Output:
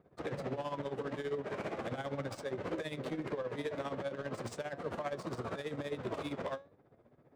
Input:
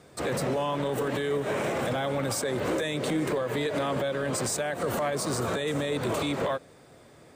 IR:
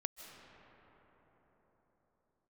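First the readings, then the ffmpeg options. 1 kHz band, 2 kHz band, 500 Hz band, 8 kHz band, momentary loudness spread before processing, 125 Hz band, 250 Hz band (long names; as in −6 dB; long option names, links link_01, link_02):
−10.5 dB, −11.5 dB, −10.0 dB, −22.5 dB, 1 LU, −10.5 dB, −10.5 dB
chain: -af "adynamicsmooth=sensitivity=5.5:basefreq=1200,tremolo=f=15:d=0.75,flanger=delay=5.1:depth=6.8:regen=81:speed=0.39:shape=triangular,volume=-2.5dB"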